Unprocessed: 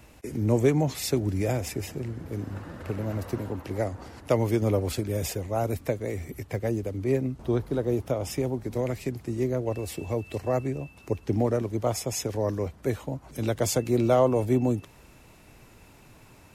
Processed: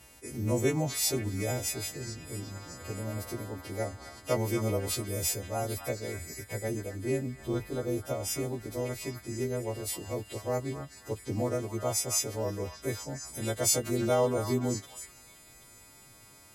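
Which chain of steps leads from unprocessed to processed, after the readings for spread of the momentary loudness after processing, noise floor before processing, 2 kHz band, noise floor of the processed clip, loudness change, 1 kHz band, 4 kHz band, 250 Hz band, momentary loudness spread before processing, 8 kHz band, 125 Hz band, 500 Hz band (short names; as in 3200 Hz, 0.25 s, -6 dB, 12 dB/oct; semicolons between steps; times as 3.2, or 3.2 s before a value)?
12 LU, -53 dBFS, -0.5 dB, -55 dBFS, -4.0 dB, -4.5 dB, +2.5 dB, -6.5 dB, 11 LU, +5.0 dB, -6.0 dB, -5.5 dB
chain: frequency quantiser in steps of 2 st; companded quantiser 8-bit; delay with a stepping band-pass 0.261 s, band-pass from 1300 Hz, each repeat 0.7 oct, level -5 dB; gain -5 dB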